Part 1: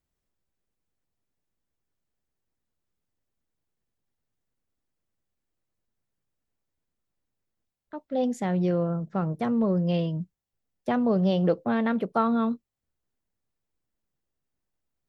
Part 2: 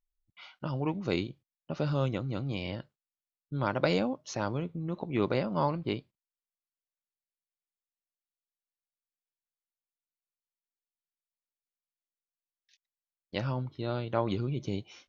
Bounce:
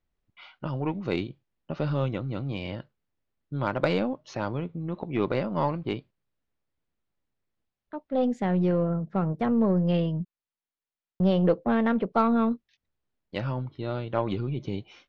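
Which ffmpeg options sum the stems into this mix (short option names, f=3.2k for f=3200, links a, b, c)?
-filter_complex "[0:a]volume=1dB,asplit=3[a][b][c];[a]atrim=end=10.25,asetpts=PTS-STARTPTS,afade=t=out:st=10.246:d=0.004:c=hsin[d];[b]atrim=start=10.25:end=11.2,asetpts=PTS-STARTPTS,volume=0[e];[c]atrim=start=11.2,asetpts=PTS-STARTPTS,afade=t=in:d=0.004:c=hsin[f];[d][e][f]concat=n=3:v=0:a=1[g];[1:a]volume=2.5dB[h];[g][h]amix=inputs=2:normalize=0,lowpass=3.6k,aeval=exprs='0.355*(cos(1*acos(clip(val(0)/0.355,-1,1)))-cos(1*PI/2))+0.0126*(cos(6*acos(clip(val(0)/0.355,-1,1)))-cos(6*PI/2))':c=same"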